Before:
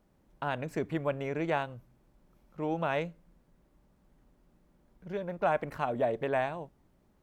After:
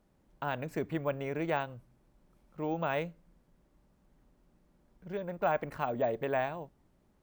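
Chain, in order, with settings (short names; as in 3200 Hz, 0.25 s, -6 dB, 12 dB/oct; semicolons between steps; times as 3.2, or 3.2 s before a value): careless resampling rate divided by 2×, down none, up hold; gain -1.5 dB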